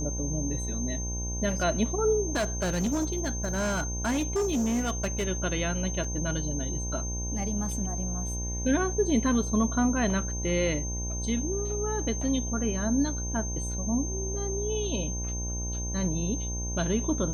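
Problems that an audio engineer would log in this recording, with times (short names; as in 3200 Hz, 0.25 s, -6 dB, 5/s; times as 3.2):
buzz 60 Hz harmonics 17 -33 dBFS
tone 6300 Hz -35 dBFS
2.32–5.25 clipped -23.5 dBFS
6.04 gap 4.3 ms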